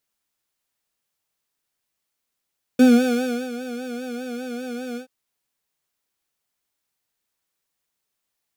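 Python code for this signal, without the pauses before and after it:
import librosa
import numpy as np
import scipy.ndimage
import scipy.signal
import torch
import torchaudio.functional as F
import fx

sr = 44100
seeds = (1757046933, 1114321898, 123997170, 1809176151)

y = fx.sub_patch_vibrato(sr, seeds[0], note=71, wave='square', wave2='saw', interval_st=7, detune_cents=21, level2_db=-5.5, sub_db=-5.5, noise_db=-29.5, kind='highpass', cutoff_hz=180.0, q=8.7, env_oct=0.5, env_decay_s=0.27, env_sustain_pct=40, attack_ms=4.2, decay_s=0.7, sustain_db=-13.5, release_s=0.1, note_s=2.18, lfo_hz=5.0, vibrato_cents=72)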